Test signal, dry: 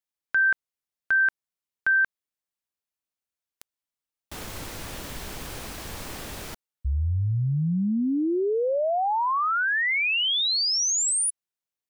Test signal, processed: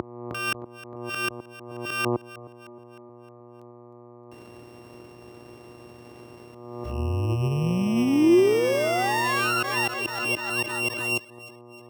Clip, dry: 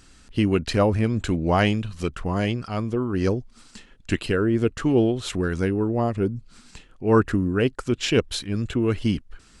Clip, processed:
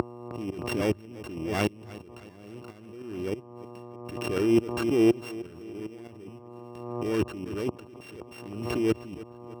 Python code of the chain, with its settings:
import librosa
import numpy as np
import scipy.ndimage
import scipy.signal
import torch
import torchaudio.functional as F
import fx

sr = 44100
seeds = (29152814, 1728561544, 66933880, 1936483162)

p1 = np.r_[np.sort(x[:len(x) // 16 * 16].reshape(-1, 16), axis=1).ravel(), x[len(x) // 16 * 16:]]
p2 = fx.high_shelf(p1, sr, hz=6100.0, db=-7.5)
p3 = 10.0 ** (-17.0 / 20.0) * np.tanh(p2 / 10.0 ** (-17.0 / 20.0))
p4 = p2 + (p3 * librosa.db_to_amplitude(-8.5))
p5 = fx.leveller(p4, sr, passes=1)
p6 = fx.dmg_buzz(p5, sr, base_hz=120.0, harmonics=10, level_db=-31.0, tilt_db=-3, odd_only=False)
p7 = fx.transient(p6, sr, attack_db=4, sustain_db=-7)
p8 = fx.over_compress(p7, sr, threshold_db=-27.0, ratio=-1.0)
p9 = fx.gate_flip(p8, sr, shuts_db=-22.0, range_db=-30)
p10 = scipy.signal.sosfilt(scipy.signal.butter(4, 73.0, 'highpass', fs=sr, output='sos'), p9)
p11 = fx.peak_eq(p10, sr, hz=350.0, db=10.5, octaves=0.59)
p12 = p11 + fx.echo_feedback(p11, sr, ms=310, feedback_pct=52, wet_db=-17.0, dry=0)
p13 = fx.pre_swell(p12, sr, db_per_s=44.0)
y = p13 * librosa.db_to_amplitude(5.0)